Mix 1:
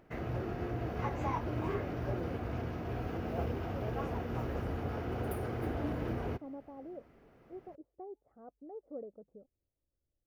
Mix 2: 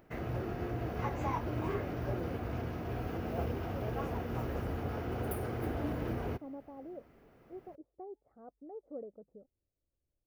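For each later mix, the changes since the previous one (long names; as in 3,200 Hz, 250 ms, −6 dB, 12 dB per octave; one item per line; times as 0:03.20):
background: add high-shelf EQ 11,000 Hz +10 dB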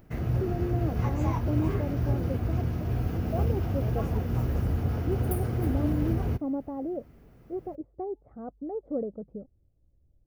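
speech +10.5 dB
master: add bass and treble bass +12 dB, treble +7 dB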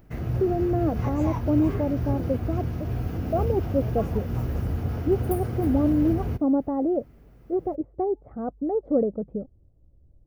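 speech +9.0 dB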